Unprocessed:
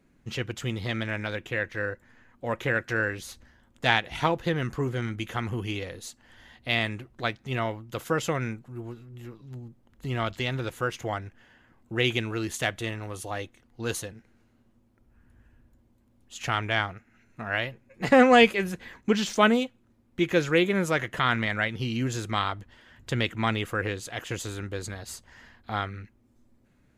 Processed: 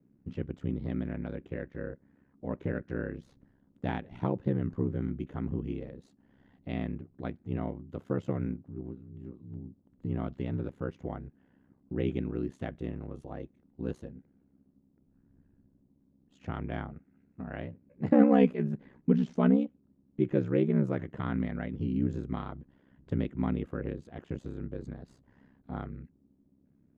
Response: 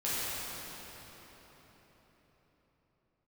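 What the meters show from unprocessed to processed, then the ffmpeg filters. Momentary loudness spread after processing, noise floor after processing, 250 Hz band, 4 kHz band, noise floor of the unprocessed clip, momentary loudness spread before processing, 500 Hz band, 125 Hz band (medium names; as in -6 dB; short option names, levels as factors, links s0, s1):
18 LU, -68 dBFS, 0.0 dB, under -20 dB, -64 dBFS, 18 LU, -6.5 dB, -2.0 dB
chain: -af "bandpass=f=200:t=q:w=1.2:csg=0,aeval=exprs='val(0)*sin(2*PI*33*n/s)':c=same,volume=1.68"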